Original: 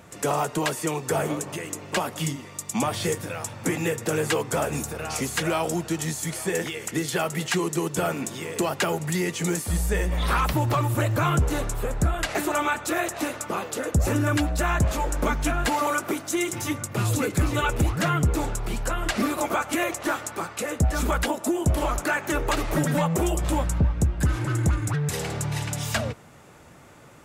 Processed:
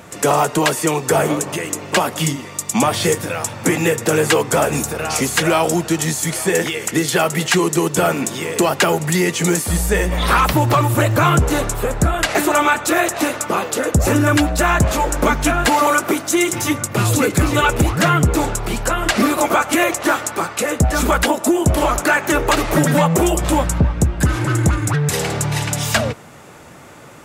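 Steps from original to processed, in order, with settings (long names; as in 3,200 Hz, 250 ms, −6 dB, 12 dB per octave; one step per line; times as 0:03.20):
low-shelf EQ 96 Hz −7.5 dB
in parallel at −10 dB: gain into a clipping stage and back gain 19 dB
on the sum: level +7.5 dB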